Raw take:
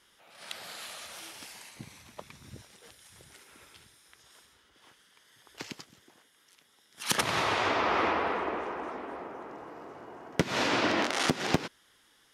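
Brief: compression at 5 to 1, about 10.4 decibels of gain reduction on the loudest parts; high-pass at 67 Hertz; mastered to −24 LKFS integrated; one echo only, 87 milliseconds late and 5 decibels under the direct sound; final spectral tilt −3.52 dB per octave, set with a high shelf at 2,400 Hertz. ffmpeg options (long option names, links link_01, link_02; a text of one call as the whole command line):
ffmpeg -i in.wav -af "highpass=67,highshelf=frequency=2400:gain=-5.5,acompressor=threshold=-34dB:ratio=5,aecho=1:1:87:0.562,volume=15dB" out.wav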